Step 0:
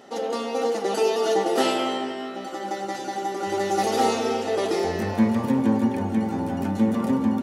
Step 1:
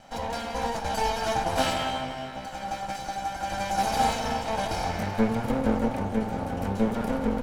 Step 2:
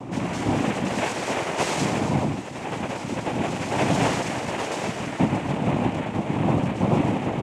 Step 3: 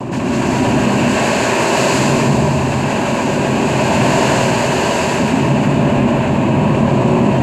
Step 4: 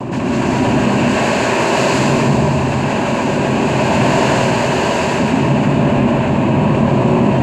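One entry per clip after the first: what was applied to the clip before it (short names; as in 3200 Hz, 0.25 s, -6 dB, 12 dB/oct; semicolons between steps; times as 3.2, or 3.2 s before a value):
minimum comb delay 1.3 ms; gain -1.5 dB
wind noise 230 Hz -26 dBFS; echo 0.118 s -6 dB; noise vocoder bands 4
ripple EQ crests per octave 1.4, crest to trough 7 dB; plate-style reverb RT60 2.3 s, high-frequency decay 1×, pre-delay 0.105 s, DRR -7 dB; fast leveller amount 50%
high shelf 8800 Hz -10.5 dB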